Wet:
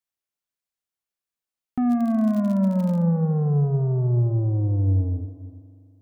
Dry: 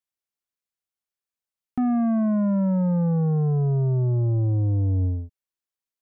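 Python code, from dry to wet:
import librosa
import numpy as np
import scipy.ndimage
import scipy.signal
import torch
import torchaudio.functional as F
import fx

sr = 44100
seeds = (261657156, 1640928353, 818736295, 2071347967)

p1 = x + fx.echo_single(x, sr, ms=373, db=-17.5, dry=0)
p2 = fx.rev_spring(p1, sr, rt60_s=2.4, pass_ms=(41,), chirp_ms=55, drr_db=10.5)
y = fx.dmg_crackle(p2, sr, seeds[0], per_s=66.0, level_db=-30.0, at=(1.89, 3.03), fade=0.02)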